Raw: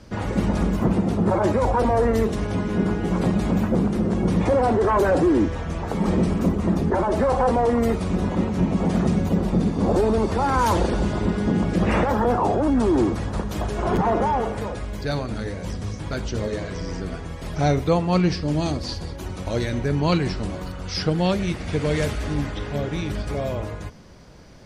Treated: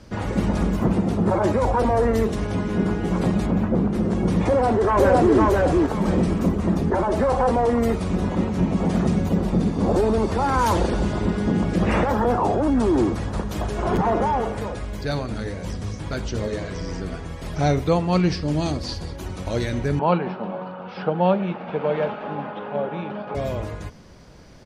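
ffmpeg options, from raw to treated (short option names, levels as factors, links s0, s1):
-filter_complex "[0:a]asplit=3[s0][s1][s2];[s0]afade=t=out:st=3.45:d=0.02[s3];[s1]lowpass=f=2100:p=1,afade=t=in:st=3.45:d=0.02,afade=t=out:st=3.93:d=0.02[s4];[s2]afade=t=in:st=3.93:d=0.02[s5];[s3][s4][s5]amix=inputs=3:normalize=0,asplit=2[s6][s7];[s7]afade=t=in:st=4.46:d=0.01,afade=t=out:st=5.35:d=0.01,aecho=0:1:510|1020|1530:0.891251|0.17825|0.03565[s8];[s6][s8]amix=inputs=2:normalize=0,asettb=1/sr,asplit=3[s9][s10][s11];[s9]atrim=end=19.994[s12];[s10]atrim=start=19.99:end=23.35,asetpts=PTS-STARTPTS,afade=t=in:d=0.004:c=qsin,afade=t=out:st=3.356:d=0.004:c=qsin,highpass=f=190:w=0.5412,highpass=f=190:w=1.3066,equalizer=f=190:t=q:w=4:g=5,equalizer=f=290:t=q:w=4:g=-9,equalizer=f=560:t=q:w=4:g=5,equalizer=f=850:t=q:w=4:g=10,equalizer=f=1300:t=q:w=4:g=3,equalizer=f=2000:t=q:w=4:g=-10,lowpass=f=2700:w=0.5412,lowpass=f=2700:w=1.3066[s13];[s11]atrim=start=23.346[s14];[s12][s13]acrossfade=d=0.004:c1=hsin:c2=qsin[s15];[s15][s14]acrossfade=d=0.004:c1=qsin:c2=hsin"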